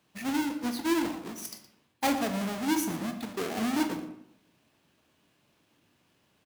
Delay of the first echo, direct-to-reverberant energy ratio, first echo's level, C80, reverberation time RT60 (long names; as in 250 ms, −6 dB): 117 ms, 5.5 dB, −15.0 dB, 10.5 dB, 0.75 s